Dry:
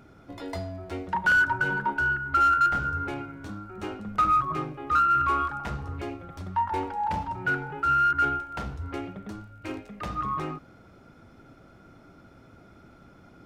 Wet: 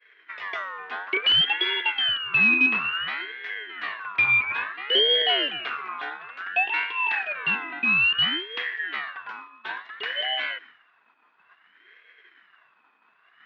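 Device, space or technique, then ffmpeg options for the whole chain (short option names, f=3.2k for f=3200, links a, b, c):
voice changer toy: -filter_complex "[0:a]aeval=exprs='val(0)*sin(2*PI*1500*n/s+1500*0.25/0.58*sin(2*PI*0.58*n/s))':c=same,highpass=470,equalizer=f=550:t=q:w=4:g=-10,equalizer=f=860:t=q:w=4:g=-7,equalizer=f=1.3k:t=q:w=4:g=-5,lowpass=f=3.6k:w=0.5412,lowpass=f=3.6k:w=1.3066,agate=range=-33dB:threshold=-50dB:ratio=3:detection=peak,asettb=1/sr,asplit=3[a][b][c];[a]atrim=end=1.414[d];[b]atrim=start=1.41:end=2.09,asetpts=PTS-STARTPTS,afade=t=in:d=0.004:c=qsin,afade=t=out:st=0.676:d=0.004:c=qsin,highpass=f=420:w=0.5412,highpass=f=420:w=1.3066[e];[c]atrim=start=2.086[f];[d][e]acrossfade=d=0.004:c1=hsin:c2=qsin[g];[g][f]acrossfade=d=0.004:c1=qsin:c2=hsin,volume=8dB"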